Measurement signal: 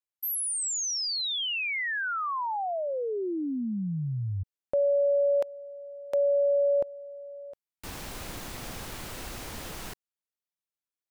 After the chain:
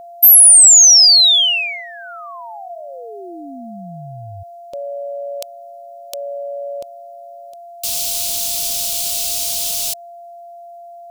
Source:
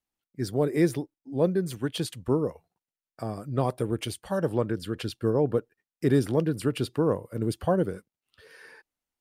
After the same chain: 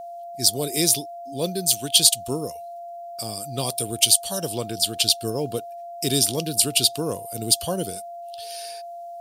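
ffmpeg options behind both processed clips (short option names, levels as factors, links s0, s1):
-af "aexciter=amount=14.4:drive=6.6:freq=2800,aeval=exprs='val(0)+0.0282*sin(2*PI*690*n/s)':c=same,volume=0.708"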